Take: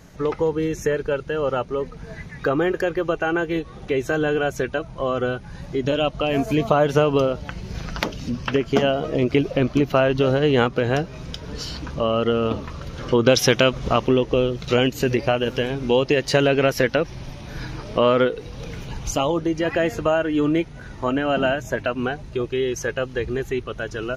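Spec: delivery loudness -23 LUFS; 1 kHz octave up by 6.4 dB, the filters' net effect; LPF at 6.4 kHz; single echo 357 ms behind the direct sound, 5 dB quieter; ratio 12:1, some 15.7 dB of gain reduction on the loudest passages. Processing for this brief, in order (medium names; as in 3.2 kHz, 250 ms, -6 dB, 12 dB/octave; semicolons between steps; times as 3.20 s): low-pass 6.4 kHz; peaking EQ 1 kHz +9 dB; compression 12:1, threshold -25 dBFS; delay 357 ms -5 dB; trim +6.5 dB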